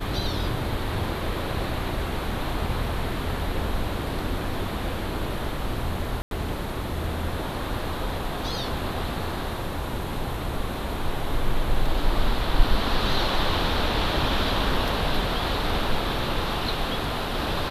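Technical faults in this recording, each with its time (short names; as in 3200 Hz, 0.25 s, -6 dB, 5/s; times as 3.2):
6.22–6.31 gap 92 ms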